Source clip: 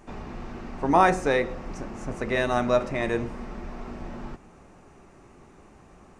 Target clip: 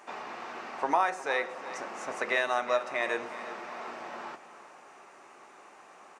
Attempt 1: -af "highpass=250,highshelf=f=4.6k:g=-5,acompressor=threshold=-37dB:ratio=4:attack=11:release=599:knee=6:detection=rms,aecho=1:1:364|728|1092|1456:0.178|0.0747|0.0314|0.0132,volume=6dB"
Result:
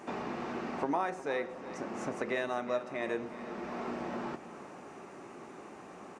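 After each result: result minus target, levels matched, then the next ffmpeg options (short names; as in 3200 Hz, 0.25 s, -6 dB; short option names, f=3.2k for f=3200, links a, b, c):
250 Hz band +11.0 dB; compressor: peak gain reduction +8.5 dB
-af "highpass=730,highshelf=f=4.6k:g=-5,acompressor=threshold=-37dB:ratio=4:attack=11:release=599:knee=6:detection=rms,aecho=1:1:364|728|1092|1456:0.178|0.0747|0.0314|0.0132,volume=6dB"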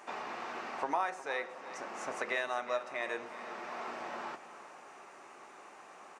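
compressor: peak gain reduction +7 dB
-af "highpass=730,highshelf=f=4.6k:g=-5,acompressor=threshold=-28dB:ratio=4:attack=11:release=599:knee=6:detection=rms,aecho=1:1:364|728|1092|1456:0.178|0.0747|0.0314|0.0132,volume=6dB"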